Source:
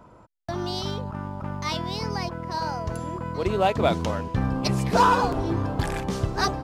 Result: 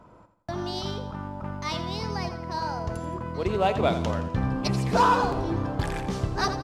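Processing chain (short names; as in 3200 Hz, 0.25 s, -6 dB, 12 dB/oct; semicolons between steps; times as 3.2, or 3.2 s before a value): high shelf 10000 Hz -7 dB; on a send: feedback echo 85 ms, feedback 43%, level -11 dB; on the sum: gain -2 dB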